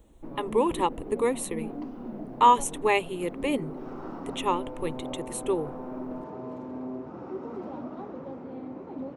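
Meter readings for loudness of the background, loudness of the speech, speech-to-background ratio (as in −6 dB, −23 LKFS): −38.5 LKFS, −27.0 LKFS, 11.5 dB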